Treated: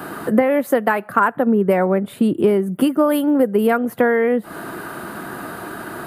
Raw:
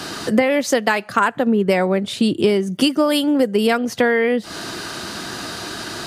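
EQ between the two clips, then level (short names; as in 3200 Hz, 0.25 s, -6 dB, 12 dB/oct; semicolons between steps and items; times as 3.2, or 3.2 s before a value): EQ curve 100 Hz 0 dB, 150 Hz +5 dB, 1400 Hz +6 dB, 5700 Hz -19 dB, 12000 Hz +9 dB; -4.5 dB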